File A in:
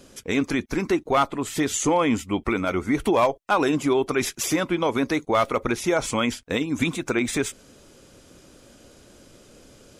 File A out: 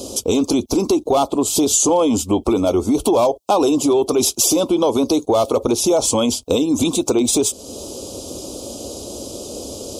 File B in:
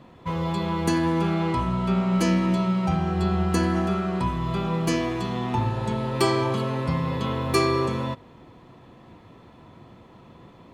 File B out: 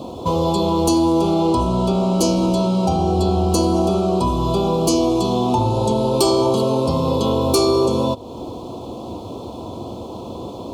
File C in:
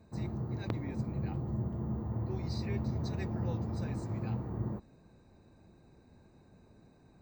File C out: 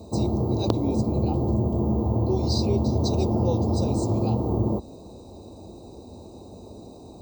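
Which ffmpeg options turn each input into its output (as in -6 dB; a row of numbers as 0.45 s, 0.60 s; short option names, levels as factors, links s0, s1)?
-af "asuperstop=centerf=1800:order=4:qfactor=0.59,apsyclip=10.6,highpass=71,equalizer=f=150:t=o:w=1:g=-12.5,acompressor=threshold=0.0631:ratio=2,volume=1.26"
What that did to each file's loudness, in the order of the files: +7.0 LU, +6.5 LU, +12.5 LU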